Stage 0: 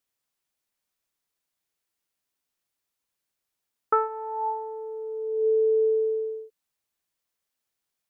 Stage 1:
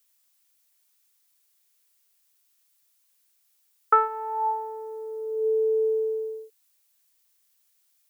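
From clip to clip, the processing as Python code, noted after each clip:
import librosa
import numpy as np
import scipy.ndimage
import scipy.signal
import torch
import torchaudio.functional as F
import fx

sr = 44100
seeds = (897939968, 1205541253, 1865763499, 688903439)

y = scipy.signal.sosfilt(scipy.signal.butter(2, 310.0, 'highpass', fs=sr, output='sos'), x)
y = fx.tilt_eq(y, sr, slope=3.5)
y = y * 10.0 ** (3.5 / 20.0)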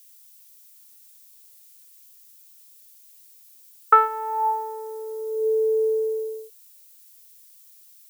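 y = fx.dmg_noise_colour(x, sr, seeds[0], colour='violet', level_db=-67.0)
y = fx.high_shelf(y, sr, hz=2200.0, db=11.5)
y = y * 10.0 ** (1.5 / 20.0)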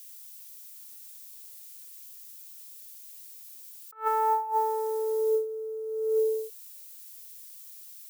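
y = fx.over_compress(x, sr, threshold_db=-27.0, ratio=-0.5)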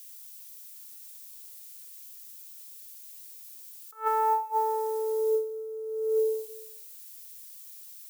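y = fx.rev_plate(x, sr, seeds[1], rt60_s=0.71, hf_ratio=1.0, predelay_ms=110, drr_db=14.5)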